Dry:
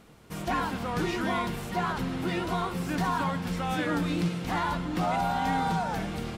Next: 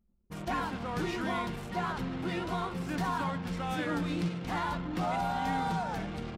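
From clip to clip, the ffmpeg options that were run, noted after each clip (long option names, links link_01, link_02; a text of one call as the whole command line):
ffmpeg -i in.wav -af "anlmdn=0.398,volume=-4dB" out.wav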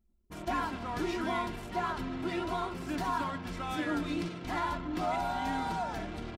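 ffmpeg -i in.wav -af "aecho=1:1:3:0.54,volume=-1.5dB" out.wav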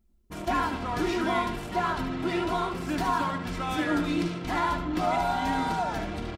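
ffmpeg -i in.wav -af "aecho=1:1:75:0.335,volume=5.5dB" out.wav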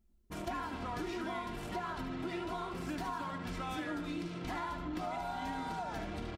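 ffmpeg -i in.wav -af "acompressor=threshold=-32dB:ratio=6,volume=-4dB" out.wav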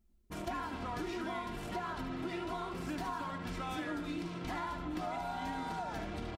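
ffmpeg -i in.wav -af "aecho=1:1:1199:0.141" out.wav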